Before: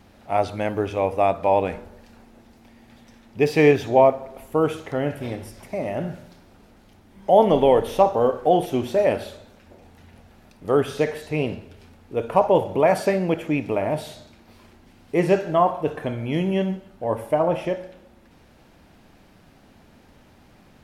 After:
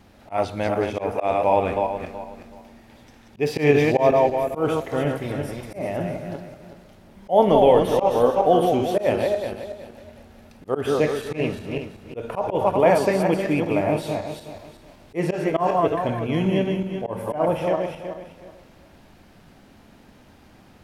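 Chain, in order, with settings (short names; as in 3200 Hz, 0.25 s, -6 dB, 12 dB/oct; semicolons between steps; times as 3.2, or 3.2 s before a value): regenerating reverse delay 0.187 s, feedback 50%, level -4 dB; auto swell 0.113 s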